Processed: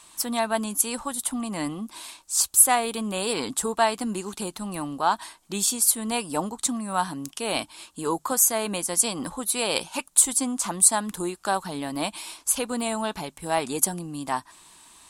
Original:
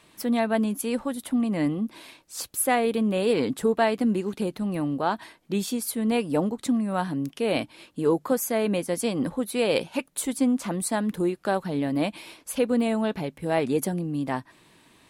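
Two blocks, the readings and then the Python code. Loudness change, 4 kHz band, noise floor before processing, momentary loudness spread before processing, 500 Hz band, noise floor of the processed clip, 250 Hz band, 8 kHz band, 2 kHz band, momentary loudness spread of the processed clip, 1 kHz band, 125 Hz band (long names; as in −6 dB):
+2.0 dB, +5.5 dB, −59 dBFS, 7 LU, −4.5 dB, −57 dBFS, −6.0 dB, +13.0 dB, +0.5 dB, 13 LU, +3.5 dB, −6.0 dB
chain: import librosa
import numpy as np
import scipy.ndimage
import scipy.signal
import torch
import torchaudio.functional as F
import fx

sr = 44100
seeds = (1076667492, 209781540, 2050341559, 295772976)

y = fx.graphic_eq(x, sr, hz=(125, 250, 500, 1000, 2000, 8000), db=(-12, -7, -11, 5, -7, 11))
y = F.gain(torch.from_numpy(y), 5.0).numpy()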